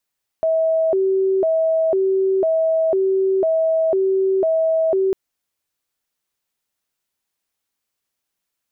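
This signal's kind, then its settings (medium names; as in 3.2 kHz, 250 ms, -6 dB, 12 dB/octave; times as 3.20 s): siren hi-lo 383–646 Hz 1 per s sine -14.5 dBFS 4.70 s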